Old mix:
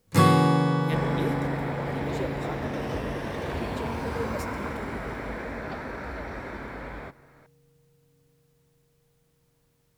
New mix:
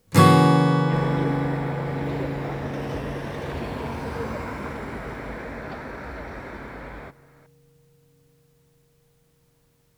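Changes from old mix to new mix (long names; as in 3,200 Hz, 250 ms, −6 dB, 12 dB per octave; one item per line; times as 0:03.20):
speech: add high-frequency loss of the air 410 metres
first sound +4.5 dB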